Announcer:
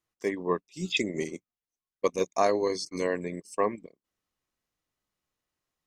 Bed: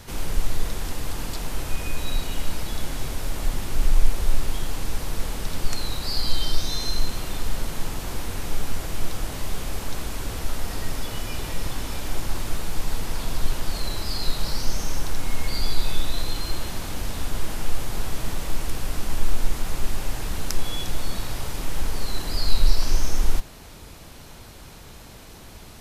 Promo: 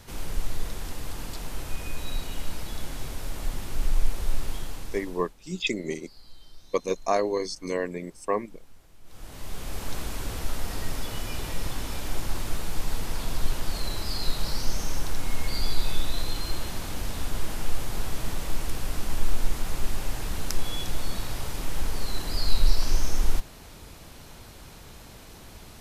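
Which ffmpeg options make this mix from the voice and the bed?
-filter_complex "[0:a]adelay=4700,volume=0dB[a];[1:a]volume=18.5dB,afade=t=out:st=4.52:d=0.82:silence=0.0891251,afade=t=in:st=9.04:d=0.88:silence=0.0630957[b];[a][b]amix=inputs=2:normalize=0"

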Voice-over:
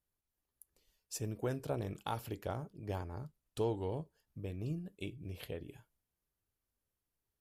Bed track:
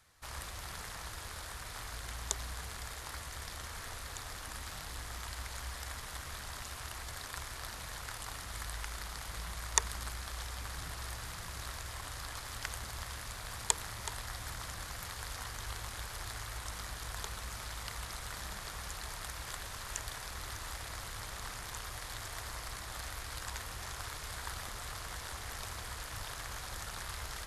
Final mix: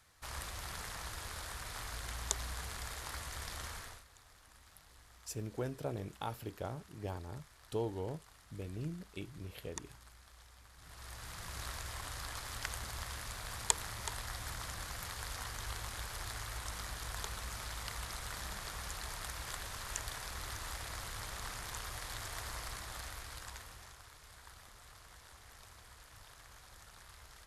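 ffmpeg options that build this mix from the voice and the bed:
-filter_complex "[0:a]adelay=4150,volume=-2dB[a];[1:a]volume=17dB,afade=t=out:st=3.68:d=0.37:silence=0.133352,afade=t=in:st=10.77:d=0.84:silence=0.141254,afade=t=out:st=22.61:d=1.4:silence=0.211349[b];[a][b]amix=inputs=2:normalize=0"

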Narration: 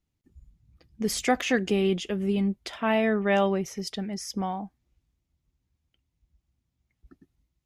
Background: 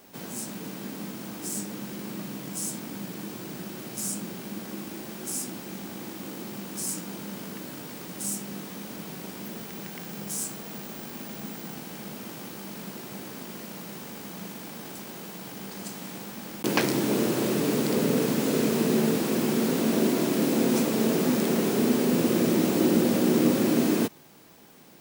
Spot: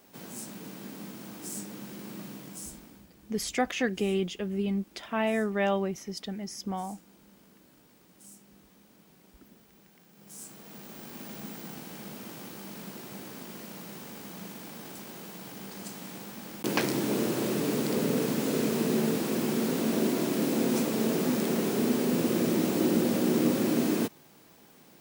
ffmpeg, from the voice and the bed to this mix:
-filter_complex "[0:a]adelay=2300,volume=-4dB[a];[1:a]volume=11.5dB,afade=t=out:st=2.26:d=0.81:silence=0.177828,afade=t=in:st=10.15:d=1.15:silence=0.141254[b];[a][b]amix=inputs=2:normalize=0"

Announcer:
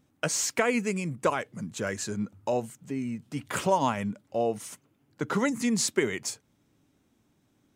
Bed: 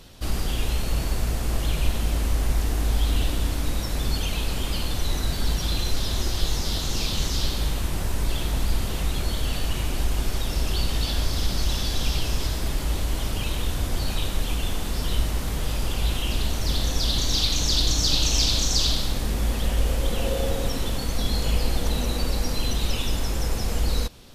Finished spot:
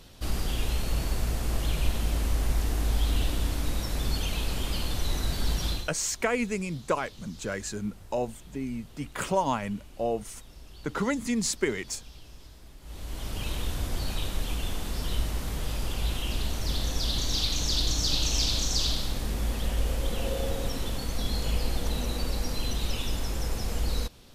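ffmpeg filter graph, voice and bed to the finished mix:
-filter_complex "[0:a]adelay=5650,volume=-1.5dB[a];[1:a]volume=15dB,afade=t=out:st=5.68:d=0.23:silence=0.1,afade=t=in:st=12.81:d=0.68:silence=0.11885[b];[a][b]amix=inputs=2:normalize=0"

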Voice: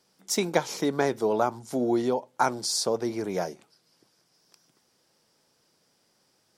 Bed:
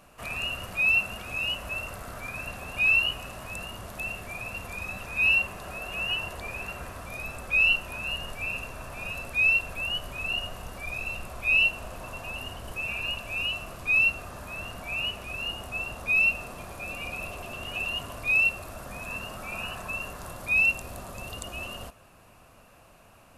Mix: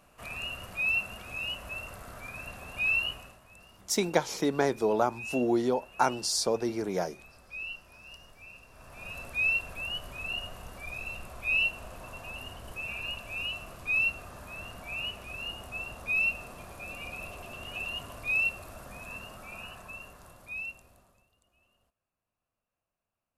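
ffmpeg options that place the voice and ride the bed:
-filter_complex "[0:a]adelay=3600,volume=-1.5dB[a];[1:a]volume=7dB,afade=t=out:st=3.09:d=0.31:silence=0.251189,afade=t=in:st=8.67:d=0.55:silence=0.237137,afade=t=out:st=18.72:d=2.56:silence=0.0354813[b];[a][b]amix=inputs=2:normalize=0"

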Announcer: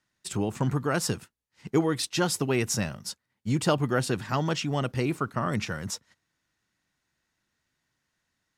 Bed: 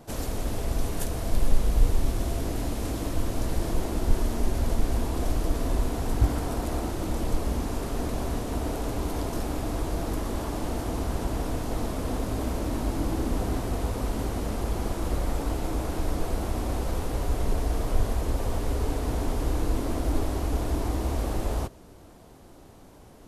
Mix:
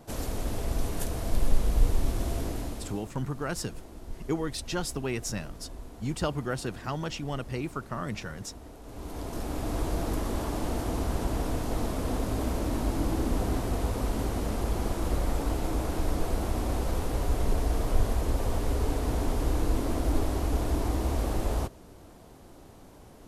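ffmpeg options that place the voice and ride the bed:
-filter_complex "[0:a]adelay=2550,volume=-6dB[a];[1:a]volume=14.5dB,afade=t=out:st=2.4:d=0.68:silence=0.177828,afade=t=in:st=8.83:d=0.99:silence=0.149624[b];[a][b]amix=inputs=2:normalize=0"

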